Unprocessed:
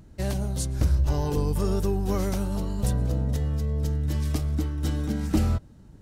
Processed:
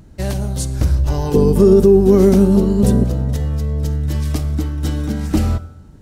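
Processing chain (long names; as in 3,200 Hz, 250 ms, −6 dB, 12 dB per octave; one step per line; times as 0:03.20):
0:01.34–0:03.04: hollow resonant body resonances 230/380 Hz, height 17 dB, ringing for 50 ms
convolution reverb RT60 0.80 s, pre-delay 41 ms, DRR 15 dB
boost into a limiter +7.5 dB
level −1 dB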